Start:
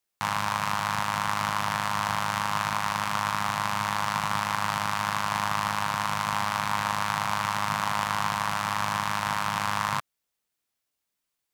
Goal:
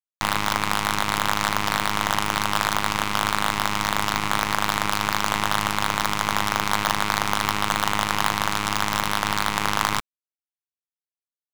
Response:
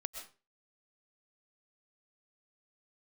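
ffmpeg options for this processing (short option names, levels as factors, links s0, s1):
-af "adynamicsmooth=sensitivity=6:basefreq=2700,acrusher=bits=4:dc=4:mix=0:aa=0.000001,volume=1.88"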